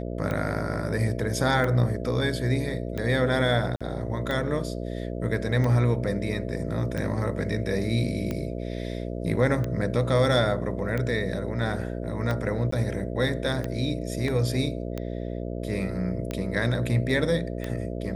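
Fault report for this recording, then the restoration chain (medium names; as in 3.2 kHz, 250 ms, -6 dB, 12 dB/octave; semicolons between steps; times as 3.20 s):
buzz 60 Hz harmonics 11 -32 dBFS
tick 45 rpm -17 dBFS
3.76–3.81 s: dropout 46 ms
12.71–12.72 s: dropout 14 ms
14.28 s: dropout 2.8 ms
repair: de-click; de-hum 60 Hz, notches 11; interpolate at 3.76 s, 46 ms; interpolate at 12.71 s, 14 ms; interpolate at 14.28 s, 2.8 ms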